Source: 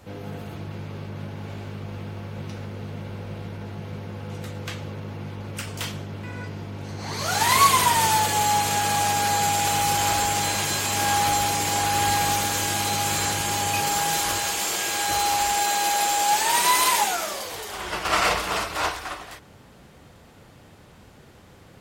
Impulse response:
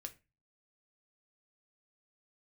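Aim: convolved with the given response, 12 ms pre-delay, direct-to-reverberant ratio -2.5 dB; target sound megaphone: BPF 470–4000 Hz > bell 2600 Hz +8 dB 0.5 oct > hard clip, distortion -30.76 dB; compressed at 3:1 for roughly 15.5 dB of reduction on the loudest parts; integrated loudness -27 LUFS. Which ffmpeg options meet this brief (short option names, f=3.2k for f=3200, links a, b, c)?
-filter_complex "[0:a]acompressor=threshold=-34dB:ratio=3,asplit=2[a][b];[1:a]atrim=start_sample=2205,adelay=12[c];[b][c]afir=irnorm=-1:irlink=0,volume=7dB[d];[a][d]amix=inputs=2:normalize=0,highpass=470,lowpass=4k,equalizer=f=2.6k:t=o:w=0.5:g=8,asoftclip=type=hard:threshold=-20dB,volume=2.5dB"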